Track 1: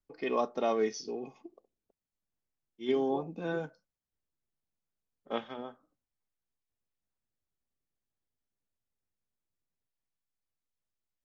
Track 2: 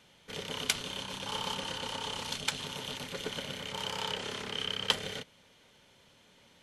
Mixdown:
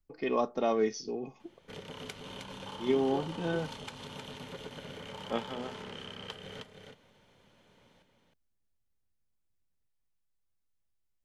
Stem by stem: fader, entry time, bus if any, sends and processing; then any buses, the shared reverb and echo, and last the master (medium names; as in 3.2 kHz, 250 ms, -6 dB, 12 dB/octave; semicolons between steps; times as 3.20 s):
0.0 dB, 0.00 s, no send, no echo send, bass shelf 130 Hz +12 dB
0.0 dB, 1.40 s, no send, echo send -5.5 dB, treble shelf 2.2 kHz -11 dB; compression 6:1, threshold -41 dBFS, peak gain reduction 13 dB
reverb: none
echo: delay 312 ms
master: none